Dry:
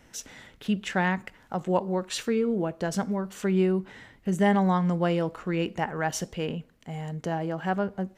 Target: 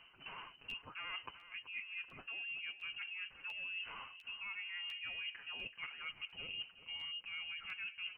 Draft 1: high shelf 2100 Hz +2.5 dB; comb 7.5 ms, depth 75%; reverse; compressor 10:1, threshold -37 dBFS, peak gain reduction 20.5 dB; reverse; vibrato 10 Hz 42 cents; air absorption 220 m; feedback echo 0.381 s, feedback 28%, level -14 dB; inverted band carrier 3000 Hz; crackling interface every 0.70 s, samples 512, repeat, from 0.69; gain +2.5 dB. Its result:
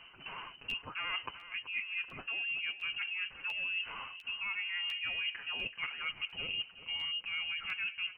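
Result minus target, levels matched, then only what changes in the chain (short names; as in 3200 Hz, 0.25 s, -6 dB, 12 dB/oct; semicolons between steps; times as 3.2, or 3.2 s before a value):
compressor: peak gain reduction -7.5 dB
change: compressor 10:1, threshold -45.5 dBFS, peak gain reduction 28.5 dB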